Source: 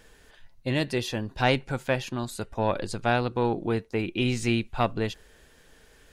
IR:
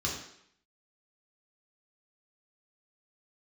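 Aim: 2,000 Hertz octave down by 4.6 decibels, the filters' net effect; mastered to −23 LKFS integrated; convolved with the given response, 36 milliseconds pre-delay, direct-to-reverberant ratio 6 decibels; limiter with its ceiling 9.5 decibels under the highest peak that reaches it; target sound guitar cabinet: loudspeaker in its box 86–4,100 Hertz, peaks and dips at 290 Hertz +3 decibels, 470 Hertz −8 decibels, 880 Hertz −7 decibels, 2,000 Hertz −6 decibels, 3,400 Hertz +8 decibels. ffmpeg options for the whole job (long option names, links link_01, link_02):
-filter_complex "[0:a]equalizer=frequency=2000:width_type=o:gain=-4.5,alimiter=limit=-18dB:level=0:latency=1,asplit=2[link_01][link_02];[1:a]atrim=start_sample=2205,adelay=36[link_03];[link_02][link_03]afir=irnorm=-1:irlink=0,volume=-12dB[link_04];[link_01][link_04]amix=inputs=2:normalize=0,highpass=86,equalizer=frequency=290:width_type=q:width=4:gain=3,equalizer=frequency=470:width_type=q:width=4:gain=-8,equalizer=frequency=880:width_type=q:width=4:gain=-7,equalizer=frequency=2000:width_type=q:width=4:gain=-6,equalizer=frequency=3400:width_type=q:width=4:gain=8,lowpass=frequency=4100:width=0.5412,lowpass=frequency=4100:width=1.3066,volume=7.5dB"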